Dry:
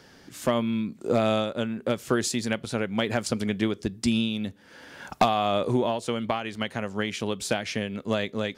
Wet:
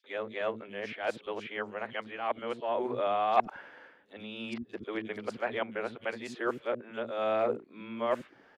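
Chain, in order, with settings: whole clip reversed; three-band isolator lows -18 dB, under 310 Hz, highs -23 dB, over 3000 Hz; three bands offset in time highs, mids, lows 40/110 ms, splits 270/3800 Hz; gain -3 dB

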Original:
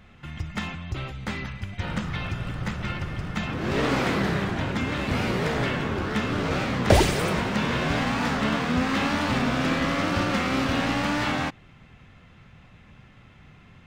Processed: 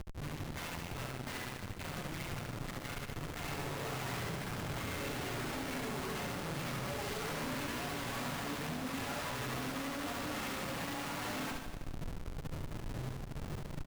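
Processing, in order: comb 7.1 ms, depth 76%; in parallel at -1.5 dB: limiter -17 dBFS, peak gain reduction 13 dB; on the sum: compressor 4:1, threshold -29 dBFS, peak gain reduction 16.5 dB; chorus voices 4, 0.69 Hz, delay 11 ms, depth 2.9 ms; harmoniser -5 st -15 dB, -3 st -12 dB; flange 0.23 Hz, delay 0.3 ms, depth 5.9 ms, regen +39%; Schmitt trigger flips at -47 dBFS; on a send: reverse bouncing-ball echo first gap 70 ms, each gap 1.1×, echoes 5; on the sum: gain -4 dB

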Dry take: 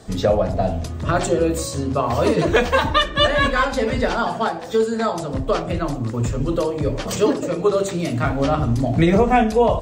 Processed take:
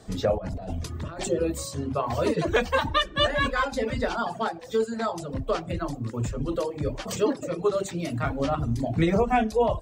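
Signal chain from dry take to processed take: reverb removal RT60 0.63 s; 0.38–1.28 negative-ratio compressor -27 dBFS, ratio -1; gain -6 dB

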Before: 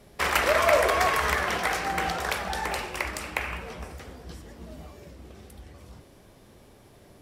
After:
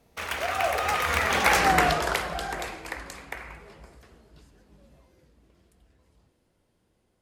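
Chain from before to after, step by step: Doppler pass-by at 1.66, 42 m/s, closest 9.7 m; gain +8.5 dB

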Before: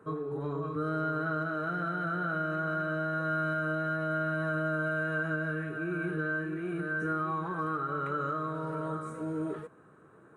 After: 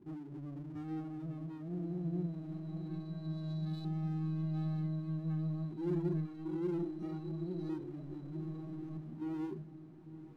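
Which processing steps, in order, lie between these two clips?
brick-wall FIR band-stop 390–3900 Hz; LFO low-pass saw up 0.26 Hz 420–3700 Hz; power-law curve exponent 0.7; on a send: diffused feedback echo 0.959 s, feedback 59%, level -8.5 dB; on the sum: spectral noise reduction 9 dB; gain -2 dB

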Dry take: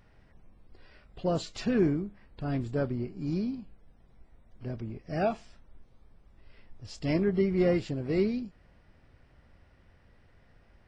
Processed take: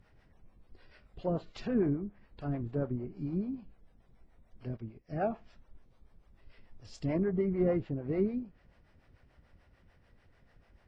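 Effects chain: treble ducked by the level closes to 1400 Hz, closed at -28 dBFS; harmonic tremolo 6.8 Hz, depth 70%, crossover 420 Hz; 4.77–5.22 upward expander 1.5:1, over -55 dBFS

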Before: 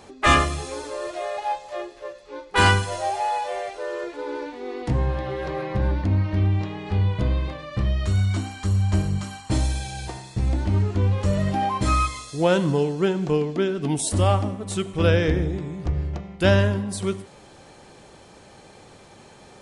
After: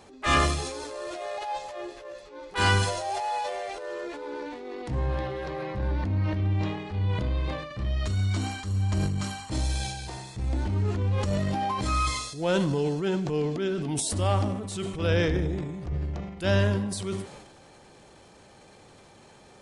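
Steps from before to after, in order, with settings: dynamic EQ 4700 Hz, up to +4 dB, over -45 dBFS, Q 1.3; transient shaper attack -7 dB, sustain +8 dB; gain -5 dB

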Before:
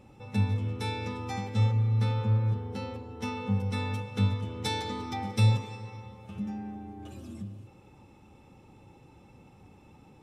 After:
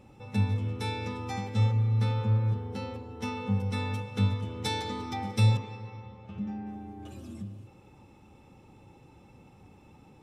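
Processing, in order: 5.57–6.67 air absorption 130 m

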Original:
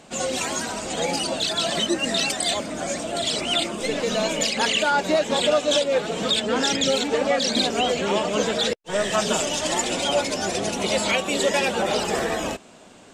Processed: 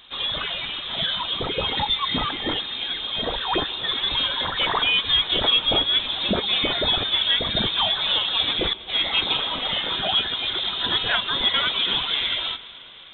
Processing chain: HPF 100 Hz; on a send at -16.5 dB: reverb RT60 4.7 s, pre-delay 0.107 s; on the sum: inverted band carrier 3900 Hz

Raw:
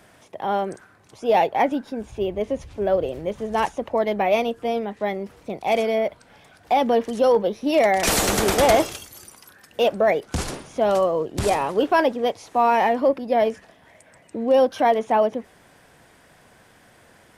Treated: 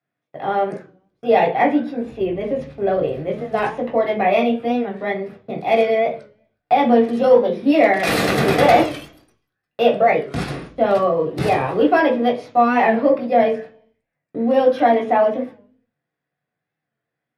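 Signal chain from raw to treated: gate -40 dBFS, range -33 dB; reverb RT60 0.40 s, pre-delay 3 ms, DRR -1.5 dB; record warp 45 rpm, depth 100 cents; gain -7.5 dB

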